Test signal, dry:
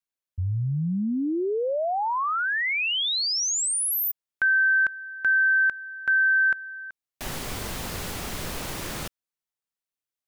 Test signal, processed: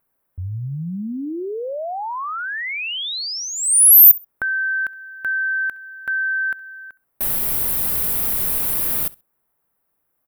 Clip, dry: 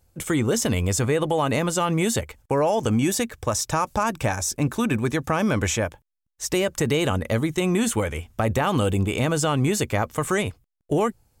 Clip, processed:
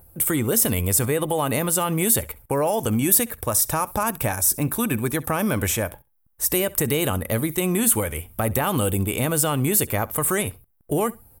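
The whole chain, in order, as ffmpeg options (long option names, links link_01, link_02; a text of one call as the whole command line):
ffmpeg -i in.wav -filter_complex "[0:a]acrossover=split=1600[link_01][link_02];[link_01]acompressor=mode=upward:threshold=-34dB:ratio=1.5:attack=39:release=45:knee=2.83:detection=peak[link_03];[link_02]aexciter=amount=6.4:drive=8.6:freq=9300[link_04];[link_03][link_04]amix=inputs=2:normalize=0,aecho=1:1:66|132:0.0794|0.0143,volume=-1dB" out.wav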